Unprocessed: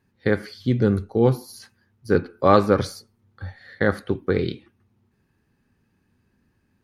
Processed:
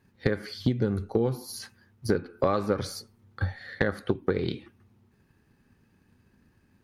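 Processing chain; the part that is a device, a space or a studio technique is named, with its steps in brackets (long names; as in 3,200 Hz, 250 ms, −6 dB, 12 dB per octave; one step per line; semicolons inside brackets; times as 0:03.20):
drum-bus smash (transient designer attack +7 dB, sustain +2 dB; downward compressor 8 to 1, threshold −23 dBFS, peak gain reduction 16 dB; soft clipping −11.5 dBFS, distortion −22 dB)
level +2 dB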